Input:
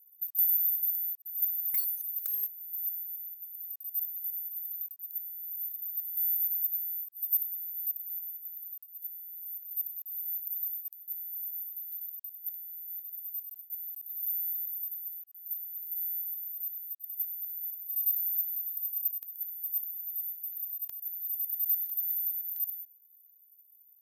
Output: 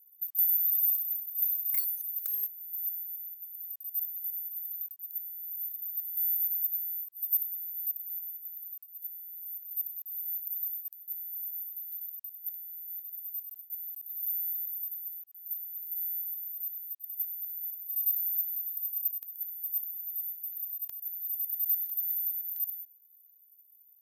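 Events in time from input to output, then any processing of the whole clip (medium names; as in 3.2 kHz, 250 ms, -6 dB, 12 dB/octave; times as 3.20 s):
0.65–1.79 s: flutter echo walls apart 5.7 m, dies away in 0.79 s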